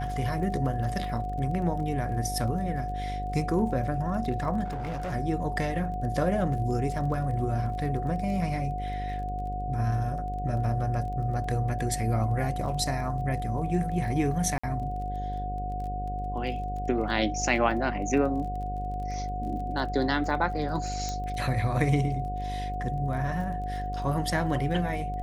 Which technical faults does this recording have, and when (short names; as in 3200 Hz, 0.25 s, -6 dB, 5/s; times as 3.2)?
buzz 50 Hz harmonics 15 -34 dBFS
crackle 24/s -38 dBFS
tone 730 Hz -33 dBFS
4.64–5.14 clipped -29.5 dBFS
14.58–14.63 gap 55 ms
21.09 pop -20 dBFS